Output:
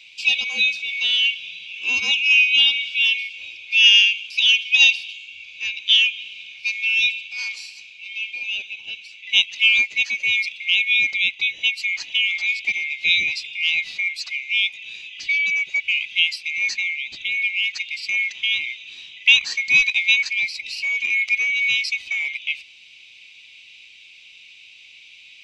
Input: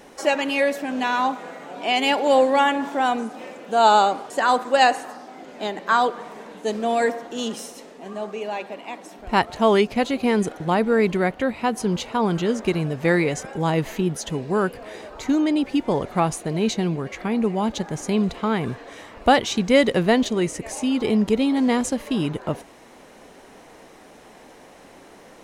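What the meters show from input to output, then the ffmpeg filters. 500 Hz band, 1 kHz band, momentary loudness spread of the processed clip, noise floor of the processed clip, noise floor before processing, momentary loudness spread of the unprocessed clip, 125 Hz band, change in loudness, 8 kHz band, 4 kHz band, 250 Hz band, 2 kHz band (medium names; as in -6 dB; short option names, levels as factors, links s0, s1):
under -30 dB, under -25 dB, 16 LU, -47 dBFS, -47 dBFS, 15 LU, under -25 dB, +4.0 dB, -1.0 dB, +13.0 dB, under -30 dB, +11.0 dB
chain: -af "afftfilt=real='real(if(lt(b,920),b+92*(1-2*mod(floor(b/92),2)),b),0)':imag='imag(if(lt(b,920),b+92*(1-2*mod(floor(b/92),2)),b),0)':win_size=2048:overlap=0.75,lowpass=f=4900:t=q:w=2.4,highshelf=f=1800:t=q:w=1.5:g=12.5,volume=0.168"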